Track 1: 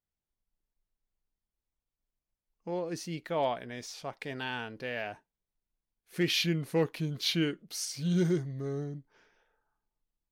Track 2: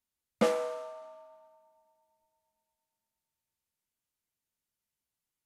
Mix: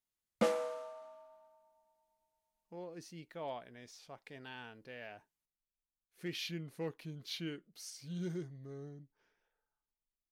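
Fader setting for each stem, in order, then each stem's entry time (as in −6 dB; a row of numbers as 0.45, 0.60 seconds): −12.5, −4.5 decibels; 0.05, 0.00 seconds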